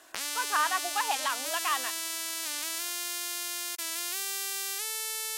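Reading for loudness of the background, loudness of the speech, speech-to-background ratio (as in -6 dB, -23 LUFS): -32.0 LUFS, -31.5 LUFS, 0.5 dB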